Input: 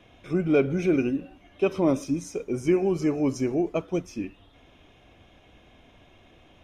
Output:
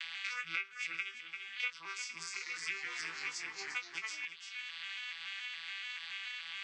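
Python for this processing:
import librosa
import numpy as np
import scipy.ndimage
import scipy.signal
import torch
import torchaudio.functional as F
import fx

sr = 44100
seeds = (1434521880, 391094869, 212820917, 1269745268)

y = fx.vocoder_arp(x, sr, chord='minor triad', root=52, every_ms=142)
y = scipy.signal.sosfilt(scipy.signal.cheby2(4, 50, 660.0, 'highpass', fs=sr, output='sos'), y)
y = fx.doubler(y, sr, ms=18.0, db=-7.0)
y = y + 10.0 ** (-15.0 / 20.0) * np.pad(y, (int(341 * sr / 1000.0), 0))[:len(y)]
y = fx.echo_pitch(y, sr, ms=88, semitones=-2, count=3, db_per_echo=-6.0, at=(2.25, 4.25))
y = fx.band_squash(y, sr, depth_pct=100)
y = F.gain(torch.from_numpy(y), 13.5).numpy()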